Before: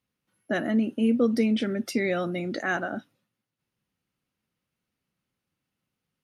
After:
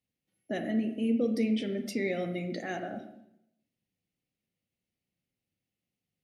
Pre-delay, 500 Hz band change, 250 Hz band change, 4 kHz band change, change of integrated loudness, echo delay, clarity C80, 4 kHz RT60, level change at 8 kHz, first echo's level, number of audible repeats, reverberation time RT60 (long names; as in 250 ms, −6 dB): 30 ms, −5.0 dB, −5.0 dB, −5.5 dB, −5.5 dB, no echo audible, 11.0 dB, 0.65 s, −6.0 dB, no echo audible, no echo audible, 0.80 s